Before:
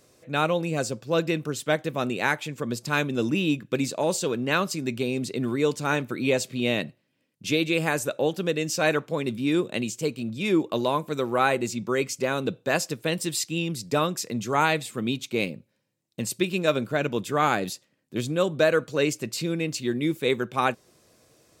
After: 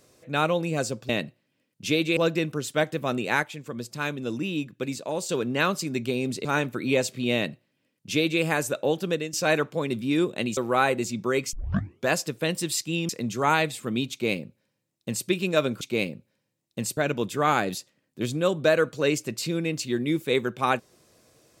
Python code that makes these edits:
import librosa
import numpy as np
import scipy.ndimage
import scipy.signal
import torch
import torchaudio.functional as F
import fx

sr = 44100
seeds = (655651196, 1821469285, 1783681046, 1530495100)

y = fx.edit(x, sr, fx.clip_gain(start_s=2.35, length_s=1.86, db=-5.0),
    fx.cut(start_s=5.37, length_s=0.44),
    fx.duplicate(start_s=6.7, length_s=1.08, to_s=1.09),
    fx.fade_out_to(start_s=8.41, length_s=0.28, curve='qsin', floor_db=-13.0),
    fx.cut(start_s=9.93, length_s=1.27),
    fx.tape_start(start_s=12.16, length_s=0.54),
    fx.cut(start_s=13.72, length_s=0.48),
    fx.duplicate(start_s=15.22, length_s=1.16, to_s=16.92), tone=tone)